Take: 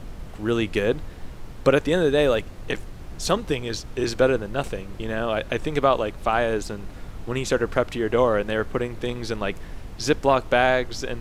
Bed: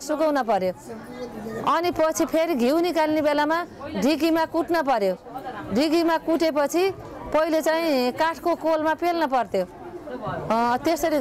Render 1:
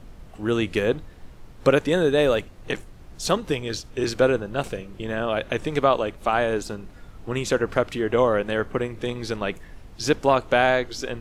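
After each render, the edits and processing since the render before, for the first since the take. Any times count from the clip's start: noise print and reduce 7 dB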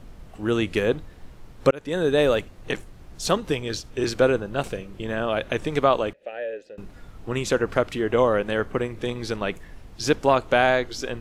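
1.71–2.13 fade in; 6.13–6.78 vowel filter e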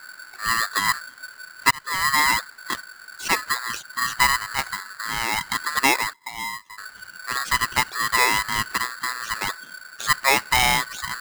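loudest bins only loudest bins 64; polarity switched at an audio rate 1500 Hz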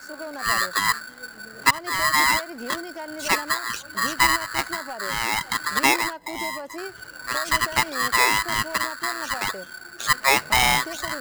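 add bed -14.5 dB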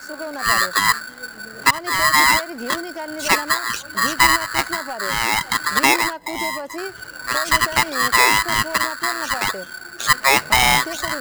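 gain +5 dB; limiter -3 dBFS, peak gain reduction 3 dB

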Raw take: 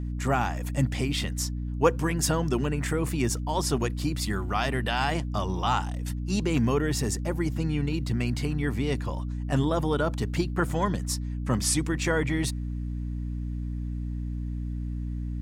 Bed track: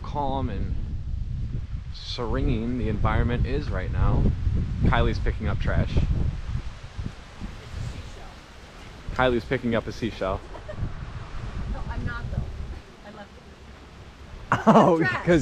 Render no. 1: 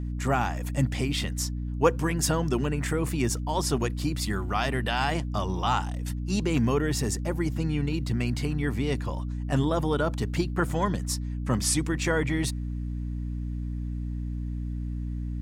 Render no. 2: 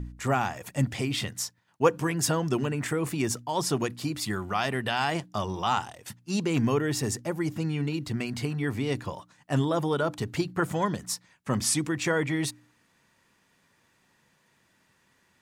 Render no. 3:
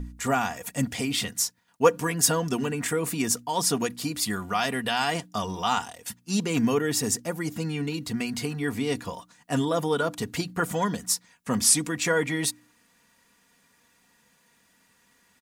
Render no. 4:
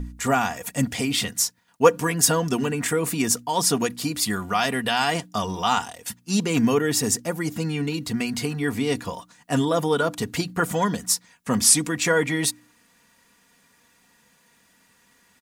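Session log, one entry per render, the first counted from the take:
nothing audible
de-hum 60 Hz, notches 5
high shelf 5600 Hz +9 dB; comb 4.2 ms, depth 50%
gain +3.5 dB; limiter -3 dBFS, peak gain reduction 2 dB

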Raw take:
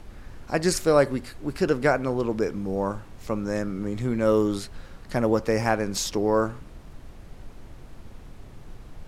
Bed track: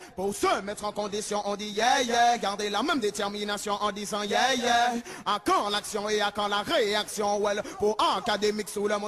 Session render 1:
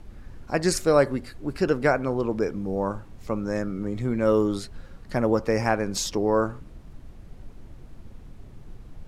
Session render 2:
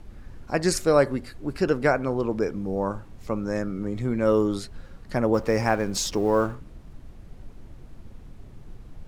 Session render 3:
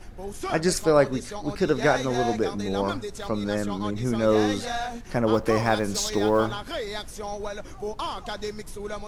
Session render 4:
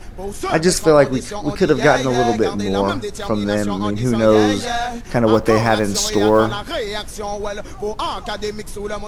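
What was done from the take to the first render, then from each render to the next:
denoiser 6 dB, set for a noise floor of -45 dBFS
5.34–6.55 G.711 law mismatch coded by mu
add bed track -7 dB
gain +8 dB; limiter -1 dBFS, peak gain reduction 2.5 dB

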